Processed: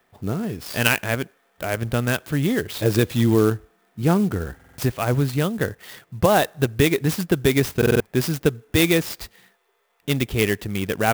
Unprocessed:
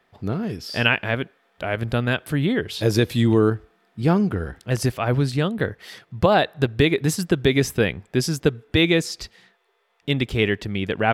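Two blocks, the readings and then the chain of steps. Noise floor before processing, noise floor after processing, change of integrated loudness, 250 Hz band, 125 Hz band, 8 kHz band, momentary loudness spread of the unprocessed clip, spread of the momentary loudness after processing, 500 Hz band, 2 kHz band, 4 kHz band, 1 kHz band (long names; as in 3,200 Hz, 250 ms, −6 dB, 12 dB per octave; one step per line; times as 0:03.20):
−65 dBFS, −65 dBFS, 0.0 dB, 0.0 dB, 0.0 dB, +3.0 dB, 10 LU, 11 LU, 0.0 dB, −0.5 dB, −2.0 dB, 0.0 dB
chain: buffer that repeats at 0:04.55/0:07.77, samples 2,048, times 4
converter with an unsteady clock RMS 0.035 ms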